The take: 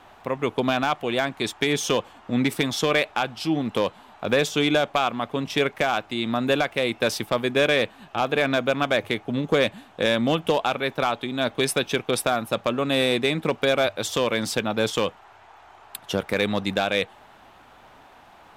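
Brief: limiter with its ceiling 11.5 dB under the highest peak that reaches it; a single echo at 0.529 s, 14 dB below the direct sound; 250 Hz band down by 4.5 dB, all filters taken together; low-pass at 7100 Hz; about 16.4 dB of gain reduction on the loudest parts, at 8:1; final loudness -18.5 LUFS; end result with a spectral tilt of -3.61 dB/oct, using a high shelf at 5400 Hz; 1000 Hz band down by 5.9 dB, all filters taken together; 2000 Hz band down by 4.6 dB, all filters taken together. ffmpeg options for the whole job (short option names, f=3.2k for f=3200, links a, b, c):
-af "lowpass=7.1k,equalizer=f=250:t=o:g=-5,equalizer=f=1k:t=o:g=-7.5,equalizer=f=2k:t=o:g=-5,highshelf=f=5.4k:g=8.5,acompressor=threshold=-37dB:ratio=8,alimiter=level_in=7dB:limit=-24dB:level=0:latency=1,volume=-7dB,aecho=1:1:529:0.2,volume=24dB"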